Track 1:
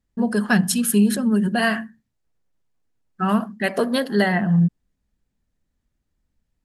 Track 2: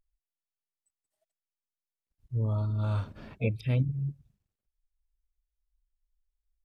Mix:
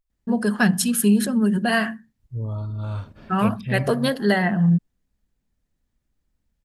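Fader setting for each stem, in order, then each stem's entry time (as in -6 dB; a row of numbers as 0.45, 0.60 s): -0.5, +0.5 dB; 0.10, 0.00 s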